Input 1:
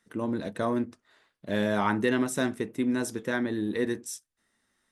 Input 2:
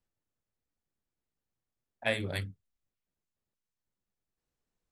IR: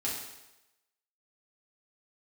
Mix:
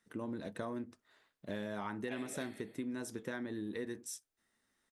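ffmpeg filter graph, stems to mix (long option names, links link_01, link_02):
-filter_complex "[0:a]volume=-6dB[link_01];[1:a]highpass=frequency=250:width=0.5412,highpass=frequency=250:width=1.3066,acompressor=threshold=-38dB:ratio=3,adelay=50,volume=-5.5dB,asplit=2[link_02][link_03];[link_03]volume=-3.5dB[link_04];[2:a]atrim=start_sample=2205[link_05];[link_04][link_05]afir=irnorm=-1:irlink=0[link_06];[link_01][link_02][link_06]amix=inputs=3:normalize=0,acompressor=threshold=-37dB:ratio=6"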